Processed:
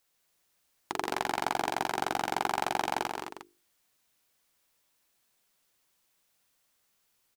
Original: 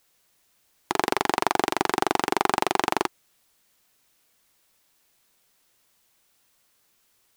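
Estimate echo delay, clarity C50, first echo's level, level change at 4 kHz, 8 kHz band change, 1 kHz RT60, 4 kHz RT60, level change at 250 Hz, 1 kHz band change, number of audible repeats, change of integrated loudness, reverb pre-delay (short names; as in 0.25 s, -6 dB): 0.144 s, none, -7.5 dB, -6.5 dB, -7.0 dB, none, none, -10.0 dB, -6.0 dB, 3, -7.0 dB, none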